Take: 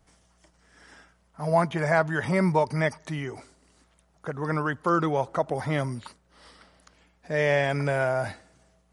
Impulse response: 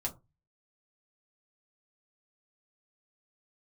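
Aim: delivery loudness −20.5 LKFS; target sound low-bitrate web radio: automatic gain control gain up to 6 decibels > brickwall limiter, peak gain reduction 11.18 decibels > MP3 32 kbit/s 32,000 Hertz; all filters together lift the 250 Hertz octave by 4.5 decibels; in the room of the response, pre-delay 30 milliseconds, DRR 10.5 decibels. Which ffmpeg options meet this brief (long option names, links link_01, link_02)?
-filter_complex "[0:a]equalizer=frequency=250:width_type=o:gain=7.5,asplit=2[link_01][link_02];[1:a]atrim=start_sample=2205,adelay=30[link_03];[link_02][link_03]afir=irnorm=-1:irlink=0,volume=-12dB[link_04];[link_01][link_04]amix=inputs=2:normalize=0,dynaudnorm=maxgain=6dB,alimiter=limit=-17dB:level=0:latency=1,volume=8dB" -ar 32000 -c:a libmp3lame -b:a 32k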